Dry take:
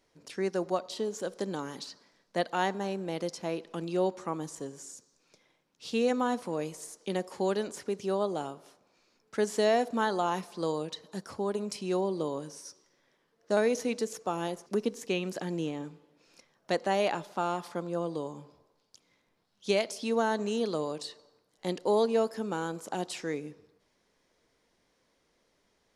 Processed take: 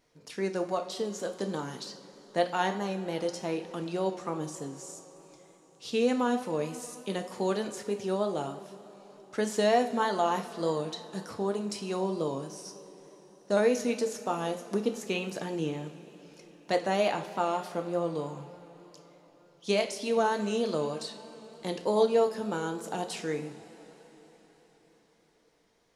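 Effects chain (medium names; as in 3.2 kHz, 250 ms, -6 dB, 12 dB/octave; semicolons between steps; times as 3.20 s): two-slope reverb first 0.41 s, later 4.9 s, from -18 dB, DRR 5 dB; vibrato 3.3 Hz 34 cents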